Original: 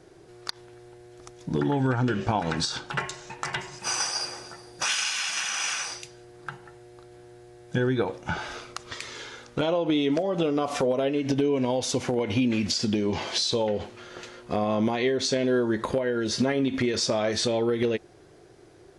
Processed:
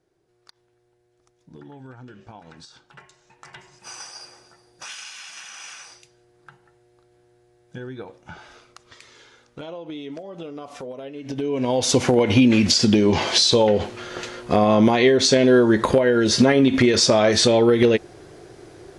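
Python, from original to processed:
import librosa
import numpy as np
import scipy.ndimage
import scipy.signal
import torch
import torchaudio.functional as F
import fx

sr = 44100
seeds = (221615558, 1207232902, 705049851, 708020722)

y = fx.gain(x, sr, db=fx.line((3.08, -18.0), (3.7, -10.5), (11.14, -10.5), (11.39, -3.0), (11.92, 9.0)))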